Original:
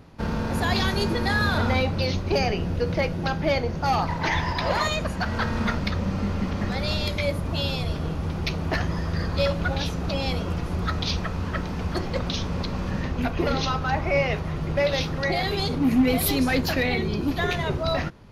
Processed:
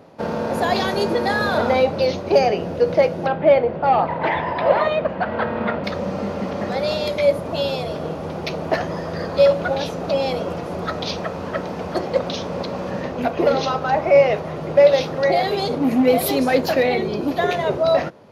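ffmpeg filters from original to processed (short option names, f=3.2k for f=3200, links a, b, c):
-filter_complex "[0:a]asettb=1/sr,asplit=3[a][b][c];[a]atrim=end=3.264[d];[b]atrim=start=3.26:end=5.84,asetpts=PTS-STARTPTS,afade=t=in:d=0.004:c=qsin,afade=t=out:st=2.576:d=0.004:c=qsin,lowpass=f=3.2k:w=0.5412,lowpass=f=3.2k:w=1.3066[e];[c]atrim=start=5.836[f];[d][e]acrossfade=d=0.004:c1=hsin:c2=qsin[g];[g][f]acrossfade=d=0.004:c1=qsin:c2=hsin,highpass=150,equalizer=f=580:t=o:w=1.2:g=12"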